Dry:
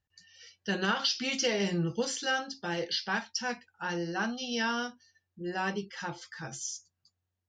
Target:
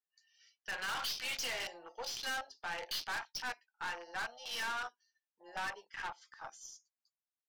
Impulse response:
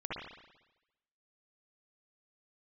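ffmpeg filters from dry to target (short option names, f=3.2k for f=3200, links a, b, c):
-af "afwtdn=0.0112,highpass=f=750:w=0.5412,highpass=f=750:w=1.3066,aeval=exprs='(tanh(89.1*val(0)+0.25)-tanh(0.25))/89.1':c=same,volume=3.5dB"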